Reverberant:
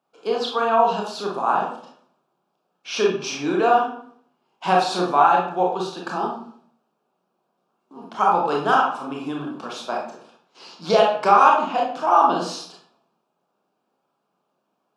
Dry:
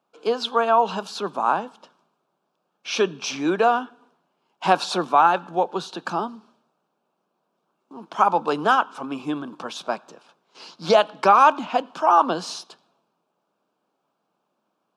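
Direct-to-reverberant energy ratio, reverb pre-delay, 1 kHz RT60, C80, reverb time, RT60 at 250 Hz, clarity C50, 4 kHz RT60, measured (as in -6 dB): -2.0 dB, 24 ms, 0.55 s, 8.5 dB, 0.55 s, 0.65 s, 3.5 dB, 0.40 s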